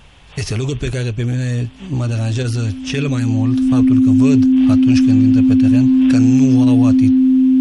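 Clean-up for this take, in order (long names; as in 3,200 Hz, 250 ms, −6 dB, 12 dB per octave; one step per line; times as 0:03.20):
notch filter 260 Hz, Q 30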